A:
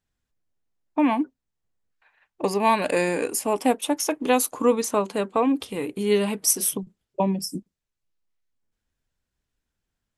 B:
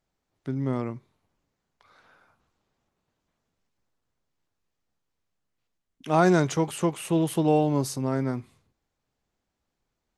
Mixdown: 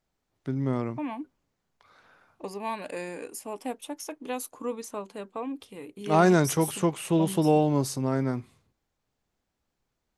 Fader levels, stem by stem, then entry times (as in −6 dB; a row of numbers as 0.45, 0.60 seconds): −13.0, 0.0 decibels; 0.00, 0.00 seconds